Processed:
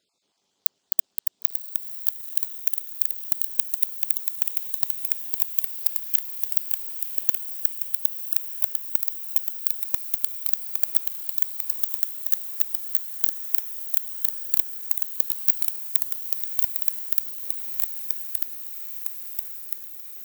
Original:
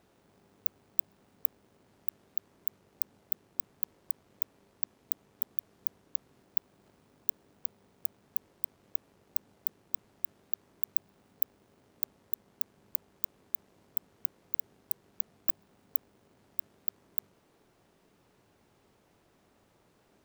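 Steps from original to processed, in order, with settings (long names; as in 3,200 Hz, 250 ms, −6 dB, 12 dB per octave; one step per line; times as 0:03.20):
time-frequency cells dropped at random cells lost 34%
high-pass filter 440 Hz 6 dB per octave
flat-topped bell 5,100 Hz +13 dB
leveller curve on the samples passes 5
on a send: feedback delay with all-pass diffusion 1,027 ms, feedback 61%, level −7.5 dB
on the sum: delay with pitch and tempo change per echo 220 ms, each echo −1 semitone, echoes 2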